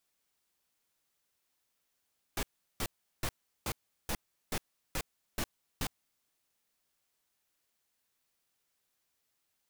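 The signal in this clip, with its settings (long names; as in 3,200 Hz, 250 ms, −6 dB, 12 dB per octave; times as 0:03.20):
noise bursts pink, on 0.06 s, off 0.37 s, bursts 9, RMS −33.5 dBFS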